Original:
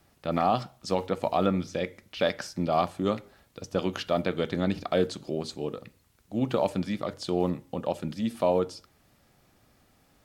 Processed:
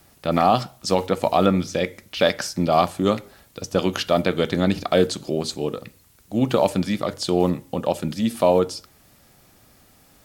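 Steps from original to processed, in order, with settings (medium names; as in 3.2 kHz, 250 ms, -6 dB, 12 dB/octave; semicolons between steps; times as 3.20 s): treble shelf 5.8 kHz +8.5 dB; trim +7 dB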